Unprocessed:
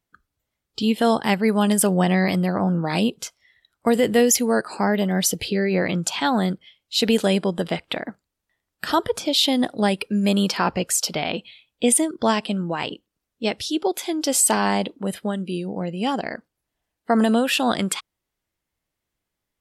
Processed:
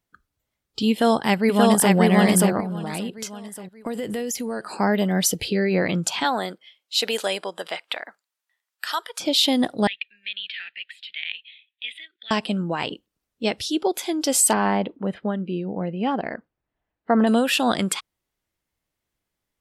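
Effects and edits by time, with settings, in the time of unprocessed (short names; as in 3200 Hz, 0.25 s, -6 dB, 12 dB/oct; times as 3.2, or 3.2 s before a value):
0.91–1.94 echo throw 0.58 s, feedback 35%, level -0.5 dB
2.6–4.73 compressor, threshold -25 dBFS
6.23–9.19 HPF 390 Hz -> 1400 Hz
9.87–12.31 elliptic band-pass 1800–3700 Hz
14.53–17.27 LPF 2200 Hz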